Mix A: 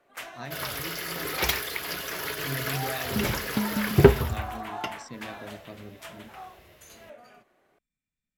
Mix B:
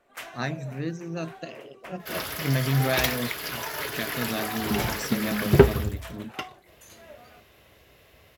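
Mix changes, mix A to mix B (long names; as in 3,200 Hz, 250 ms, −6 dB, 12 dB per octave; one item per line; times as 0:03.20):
speech +10.5 dB
second sound: entry +1.55 s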